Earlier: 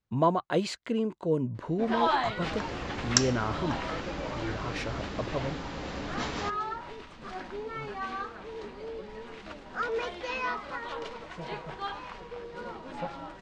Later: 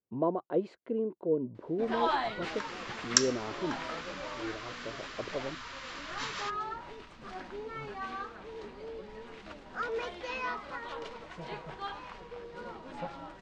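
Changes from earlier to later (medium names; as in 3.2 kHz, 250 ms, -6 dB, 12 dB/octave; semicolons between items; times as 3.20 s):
speech: add band-pass filter 400 Hz, Q 1.5; first sound -3.5 dB; second sound: add steep high-pass 1 kHz 96 dB/octave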